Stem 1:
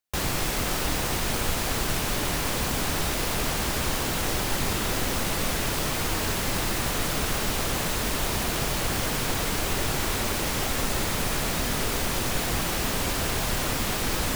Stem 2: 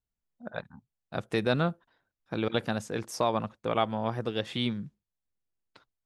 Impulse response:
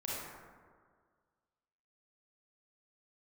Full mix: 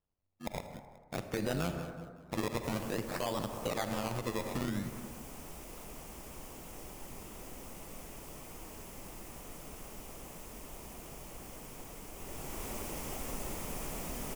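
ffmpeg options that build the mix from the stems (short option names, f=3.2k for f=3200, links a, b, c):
-filter_complex "[0:a]equalizer=f=100:t=o:w=0.67:g=-7,equalizer=f=1.6k:t=o:w=0.67:g=-9,equalizer=f=4k:t=o:w=0.67:g=-12,adelay=2500,volume=-11.5dB,afade=t=in:st=12.14:d=0.56:silence=0.421697[a];[1:a]acrusher=samples=20:mix=1:aa=0.000001:lfo=1:lforange=20:lforate=0.51,asoftclip=type=tanh:threshold=-19.5dB,tremolo=f=95:d=0.824,volume=3dB,asplit=3[b][c][d];[c]volume=-11.5dB[e];[d]volume=-18dB[f];[2:a]atrim=start_sample=2205[g];[e][g]afir=irnorm=-1:irlink=0[h];[f]aecho=0:1:187|374|561|748|935:1|0.34|0.116|0.0393|0.0134[i];[a][b][h][i]amix=inputs=4:normalize=0,alimiter=level_in=1dB:limit=-24dB:level=0:latency=1:release=106,volume=-1dB"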